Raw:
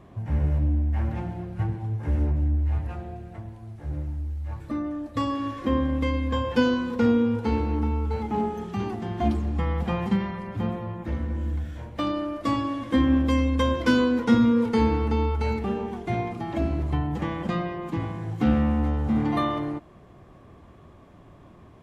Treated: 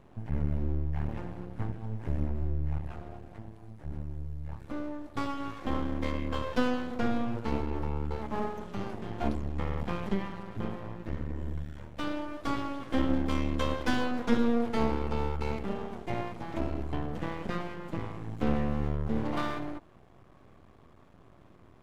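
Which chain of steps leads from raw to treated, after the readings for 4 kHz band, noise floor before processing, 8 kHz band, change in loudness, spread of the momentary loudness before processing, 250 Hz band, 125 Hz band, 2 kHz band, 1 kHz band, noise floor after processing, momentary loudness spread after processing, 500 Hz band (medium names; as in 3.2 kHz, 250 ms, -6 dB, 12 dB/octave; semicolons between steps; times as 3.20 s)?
-6.0 dB, -50 dBFS, no reading, -8.0 dB, 11 LU, -8.5 dB, -8.0 dB, -5.5 dB, -6.0 dB, -56 dBFS, 11 LU, -6.5 dB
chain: half-wave rectifier; trim -3 dB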